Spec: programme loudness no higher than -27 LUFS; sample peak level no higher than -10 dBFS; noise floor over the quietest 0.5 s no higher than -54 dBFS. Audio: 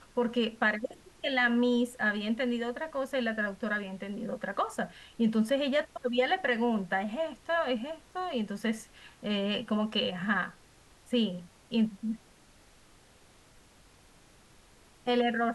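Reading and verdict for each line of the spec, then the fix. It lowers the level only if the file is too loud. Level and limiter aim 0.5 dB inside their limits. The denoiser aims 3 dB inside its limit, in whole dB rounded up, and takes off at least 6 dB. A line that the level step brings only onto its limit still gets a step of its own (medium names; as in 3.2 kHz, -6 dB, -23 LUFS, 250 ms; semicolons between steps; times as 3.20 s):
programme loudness -31.0 LUFS: pass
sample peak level -14.5 dBFS: pass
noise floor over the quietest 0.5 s -59 dBFS: pass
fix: none needed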